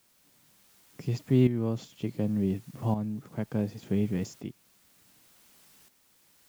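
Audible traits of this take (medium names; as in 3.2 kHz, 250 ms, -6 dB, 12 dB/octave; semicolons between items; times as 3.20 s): a quantiser's noise floor 10-bit, dither triangular; tremolo saw up 0.68 Hz, depth 65%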